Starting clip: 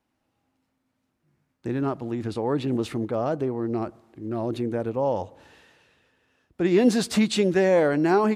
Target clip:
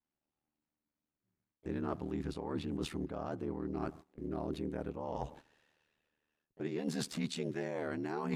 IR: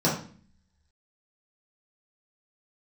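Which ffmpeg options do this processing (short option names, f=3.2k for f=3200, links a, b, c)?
-filter_complex "[0:a]agate=range=-17dB:threshold=-46dB:ratio=16:detection=peak,aeval=exprs='val(0)*sin(2*PI*38*n/s)':c=same,areverse,acompressor=threshold=-35dB:ratio=16,areverse,adynamicequalizer=threshold=0.002:dfrequency=530:dqfactor=2.2:tfrequency=530:tqfactor=2.2:attack=5:release=100:ratio=0.375:range=3.5:mode=cutabove:tftype=bell,asplit=2[a][b];[b]asetrate=55563,aresample=44100,atempo=0.793701,volume=-18dB[c];[a][c]amix=inputs=2:normalize=0,volume=2.5dB"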